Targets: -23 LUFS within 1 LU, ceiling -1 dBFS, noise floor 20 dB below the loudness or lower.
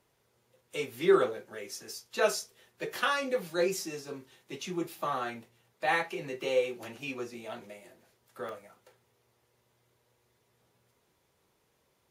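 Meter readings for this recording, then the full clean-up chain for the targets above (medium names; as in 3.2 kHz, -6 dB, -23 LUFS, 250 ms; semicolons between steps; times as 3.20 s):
dropouts 2; longest dropout 1.2 ms; loudness -32.5 LUFS; peak level -12.5 dBFS; loudness target -23.0 LUFS
-> interpolate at 3.42/8.49 s, 1.2 ms; trim +9.5 dB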